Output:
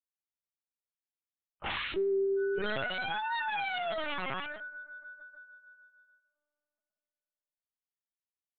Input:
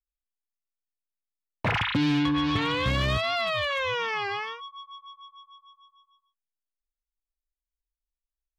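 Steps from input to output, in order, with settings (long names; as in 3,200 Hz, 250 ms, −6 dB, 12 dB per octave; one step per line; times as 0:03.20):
phase-vocoder pitch shift without resampling +5 semitones
Butterworth high-pass 310 Hz 96 dB per octave
soft clipping −19 dBFS, distortion −23 dB
gate on every frequency bin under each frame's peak −15 dB strong
on a send at −15 dB: convolution reverb RT60 3.0 s, pre-delay 3 ms
on the sum: linear-prediction vocoder at 8 kHz pitch kept
level −2.5 dB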